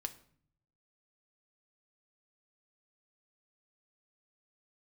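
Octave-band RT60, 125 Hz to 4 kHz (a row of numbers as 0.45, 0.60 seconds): 1.2, 0.85, 0.55, 0.55, 0.50, 0.45 seconds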